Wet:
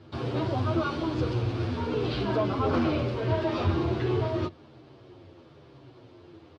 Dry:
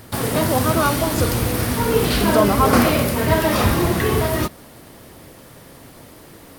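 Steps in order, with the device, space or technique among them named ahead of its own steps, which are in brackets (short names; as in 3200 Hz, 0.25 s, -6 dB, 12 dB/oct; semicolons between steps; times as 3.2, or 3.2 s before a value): barber-pole flanger into a guitar amplifier (endless flanger 9.4 ms -1.1 Hz; soft clip -12.5 dBFS, distortion -17 dB; speaker cabinet 82–4300 Hz, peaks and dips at 90 Hz +9 dB, 130 Hz +7 dB, 190 Hz -7 dB, 350 Hz +10 dB, 1900 Hz -8 dB); gain -7.5 dB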